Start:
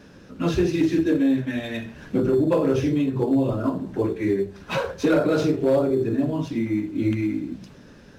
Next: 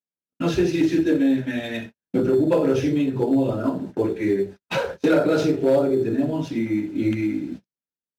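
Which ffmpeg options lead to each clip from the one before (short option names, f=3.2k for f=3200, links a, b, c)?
-af "bandreject=f=1.1k:w=6.7,agate=range=-58dB:threshold=-33dB:ratio=16:detection=peak,lowshelf=f=95:g=-10.5,volume=2dB"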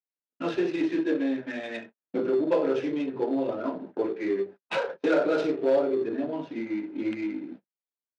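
-af "adynamicsmooth=sensitivity=3.5:basefreq=1.6k,highpass=350,lowpass=5.8k,volume=-3dB"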